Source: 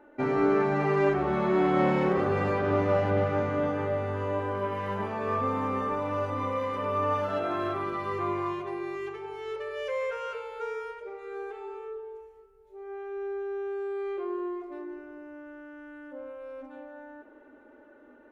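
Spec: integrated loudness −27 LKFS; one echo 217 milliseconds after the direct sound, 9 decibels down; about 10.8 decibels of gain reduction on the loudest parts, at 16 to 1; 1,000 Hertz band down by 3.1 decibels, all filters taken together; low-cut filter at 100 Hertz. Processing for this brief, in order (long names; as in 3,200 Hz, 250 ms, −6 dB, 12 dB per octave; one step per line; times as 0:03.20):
high-pass filter 100 Hz
parametric band 1,000 Hz −4 dB
downward compressor 16 to 1, threshold −31 dBFS
single-tap delay 217 ms −9 dB
level +9 dB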